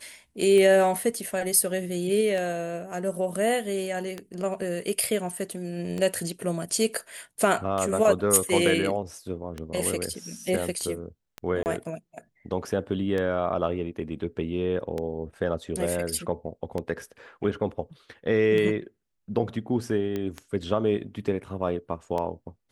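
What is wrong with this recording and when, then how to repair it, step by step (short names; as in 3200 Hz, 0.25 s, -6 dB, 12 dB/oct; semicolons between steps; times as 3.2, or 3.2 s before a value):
tick 33 1/3 rpm -18 dBFS
11.63–11.66 gap 29 ms
20.16 pop -18 dBFS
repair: de-click; interpolate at 11.63, 29 ms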